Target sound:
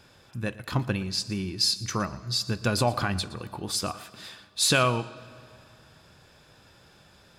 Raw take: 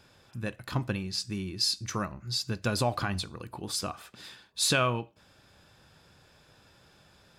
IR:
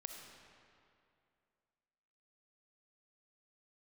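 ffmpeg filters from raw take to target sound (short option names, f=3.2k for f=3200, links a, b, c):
-filter_complex "[0:a]asplit=2[a][b];[1:a]atrim=start_sample=2205,adelay=117[c];[b][c]afir=irnorm=-1:irlink=0,volume=-13dB[d];[a][d]amix=inputs=2:normalize=0,volume=3.5dB"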